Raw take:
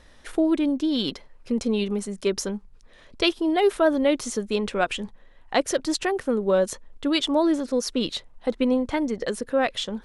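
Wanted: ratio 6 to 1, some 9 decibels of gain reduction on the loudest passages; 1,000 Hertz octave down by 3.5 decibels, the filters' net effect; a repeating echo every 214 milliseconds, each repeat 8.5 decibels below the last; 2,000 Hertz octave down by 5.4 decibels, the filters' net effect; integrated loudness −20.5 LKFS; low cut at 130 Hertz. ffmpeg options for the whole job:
ffmpeg -i in.wav -af "highpass=130,equalizer=frequency=1000:width_type=o:gain=-4,equalizer=frequency=2000:width_type=o:gain=-6,acompressor=threshold=-27dB:ratio=6,aecho=1:1:214|428|642|856:0.376|0.143|0.0543|0.0206,volume=11dB" out.wav

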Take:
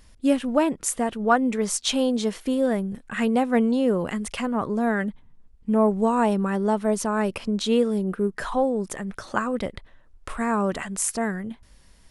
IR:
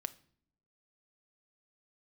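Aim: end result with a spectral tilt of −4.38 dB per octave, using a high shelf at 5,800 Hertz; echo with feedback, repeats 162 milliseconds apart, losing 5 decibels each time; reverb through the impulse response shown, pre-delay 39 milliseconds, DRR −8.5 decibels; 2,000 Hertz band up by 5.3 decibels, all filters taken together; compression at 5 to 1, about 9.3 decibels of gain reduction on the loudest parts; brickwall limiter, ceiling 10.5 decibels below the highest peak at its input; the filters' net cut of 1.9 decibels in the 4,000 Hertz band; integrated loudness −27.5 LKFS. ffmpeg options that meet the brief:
-filter_complex "[0:a]equalizer=frequency=2000:width_type=o:gain=8,equalizer=frequency=4000:width_type=o:gain=-8.5,highshelf=frequency=5800:gain=8,acompressor=threshold=-23dB:ratio=5,alimiter=limit=-19.5dB:level=0:latency=1,aecho=1:1:162|324|486|648|810|972|1134:0.562|0.315|0.176|0.0988|0.0553|0.031|0.0173,asplit=2[link_01][link_02];[1:a]atrim=start_sample=2205,adelay=39[link_03];[link_02][link_03]afir=irnorm=-1:irlink=0,volume=10.5dB[link_04];[link_01][link_04]amix=inputs=2:normalize=0,volume=-9dB"

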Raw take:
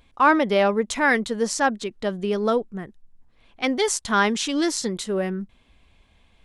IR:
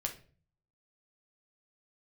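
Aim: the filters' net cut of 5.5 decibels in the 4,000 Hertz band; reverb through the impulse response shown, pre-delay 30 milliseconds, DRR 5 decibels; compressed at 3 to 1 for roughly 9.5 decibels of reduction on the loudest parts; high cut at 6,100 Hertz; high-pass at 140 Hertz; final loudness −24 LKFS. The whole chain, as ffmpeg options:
-filter_complex "[0:a]highpass=140,lowpass=6100,equalizer=frequency=4000:width_type=o:gain=-6.5,acompressor=threshold=-25dB:ratio=3,asplit=2[link_01][link_02];[1:a]atrim=start_sample=2205,adelay=30[link_03];[link_02][link_03]afir=irnorm=-1:irlink=0,volume=-6dB[link_04];[link_01][link_04]amix=inputs=2:normalize=0,volume=4dB"

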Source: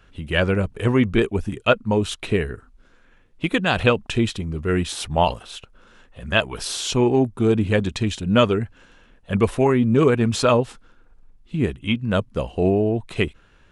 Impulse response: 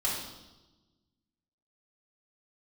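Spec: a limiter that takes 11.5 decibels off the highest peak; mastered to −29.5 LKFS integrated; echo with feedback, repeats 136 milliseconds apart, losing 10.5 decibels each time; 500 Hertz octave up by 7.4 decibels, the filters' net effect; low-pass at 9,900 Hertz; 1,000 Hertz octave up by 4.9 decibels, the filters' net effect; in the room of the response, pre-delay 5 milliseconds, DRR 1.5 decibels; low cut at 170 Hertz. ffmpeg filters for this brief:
-filter_complex "[0:a]highpass=170,lowpass=9900,equalizer=frequency=500:width_type=o:gain=8.5,equalizer=frequency=1000:width_type=o:gain=3.5,alimiter=limit=-8.5dB:level=0:latency=1,aecho=1:1:136|272|408:0.299|0.0896|0.0269,asplit=2[link_01][link_02];[1:a]atrim=start_sample=2205,adelay=5[link_03];[link_02][link_03]afir=irnorm=-1:irlink=0,volume=-8.5dB[link_04];[link_01][link_04]amix=inputs=2:normalize=0,volume=-11.5dB"

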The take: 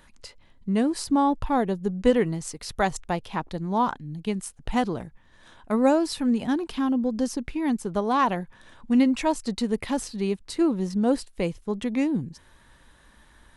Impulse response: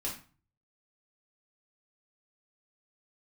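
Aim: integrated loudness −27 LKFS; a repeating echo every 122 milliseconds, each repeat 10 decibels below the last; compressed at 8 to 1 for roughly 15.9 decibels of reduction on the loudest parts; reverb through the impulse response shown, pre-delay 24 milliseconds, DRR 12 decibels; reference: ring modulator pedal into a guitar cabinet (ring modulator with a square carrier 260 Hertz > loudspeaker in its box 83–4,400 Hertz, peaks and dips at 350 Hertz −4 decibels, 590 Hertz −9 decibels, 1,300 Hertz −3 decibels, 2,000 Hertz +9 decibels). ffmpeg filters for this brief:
-filter_complex "[0:a]acompressor=threshold=-32dB:ratio=8,aecho=1:1:122|244|366|488:0.316|0.101|0.0324|0.0104,asplit=2[link_01][link_02];[1:a]atrim=start_sample=2205,adelay=24[link_03];[link_02][link_03]afir=irnorm=-1:irlink=0,volume=-14.5dB[link_04];[link_01][link_04]amix=inputs=2:normalize=0,aeval=exprs='val(0)*sgn(sin(2*PI*260*n/s))':channel_layout=same,highpass=83,equalizer=frequency=350:width_type=q:width=4:gain=-4,equalizer=frequency=590:width_type=q:width=4:gain=-9,equalizer=frequency=1300:width_type=q:width=4:gain=-3,equalizer=frequency=2000:width_type=q:width=4:gain=9,lowpass=frequency=4400:width=0.5412,lowpass=frequency=4400:width=1.3066,volume=10.5dB"

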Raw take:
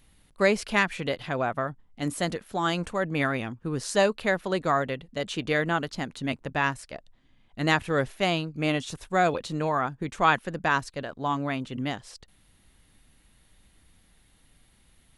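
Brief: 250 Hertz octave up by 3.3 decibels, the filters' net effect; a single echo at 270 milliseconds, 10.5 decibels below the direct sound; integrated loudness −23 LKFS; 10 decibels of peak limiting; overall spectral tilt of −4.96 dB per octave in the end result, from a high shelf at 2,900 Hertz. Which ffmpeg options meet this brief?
ffmpeg -i in.wav -af "equalizer=frequency=250:width_type=o:gain=4.5,highshelf=frequency=2900:gain=-3,alimiter=limit=-18dB:level=0:latency=1,aecho=1:1:270:0.299,volume=7dB" out.wav

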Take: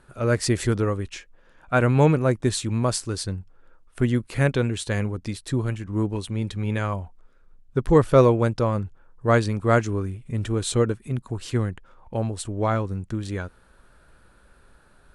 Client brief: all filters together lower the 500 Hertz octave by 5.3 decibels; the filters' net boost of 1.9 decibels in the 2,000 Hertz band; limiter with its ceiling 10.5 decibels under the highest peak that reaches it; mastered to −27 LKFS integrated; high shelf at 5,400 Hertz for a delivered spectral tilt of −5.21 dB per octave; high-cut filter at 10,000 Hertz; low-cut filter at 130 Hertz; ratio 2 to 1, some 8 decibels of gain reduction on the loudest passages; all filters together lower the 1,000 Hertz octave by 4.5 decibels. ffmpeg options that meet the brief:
ffmpeg -i in.wav -af "highpass=130,lowpass=10000,equalizer=frequency=500:width_type=o:gain=-5,equalizer=frequency=1000:width_type=o:gain=-7,equalizer=frequency=2000:width_type=o:gain=6.5,highshelf=frequency=5400:gain=-5,acompressor=threshold=-30dB:ratio=2,volume=9dB,alimiter=limit=-15dB:level=0:latency=1" out.wav

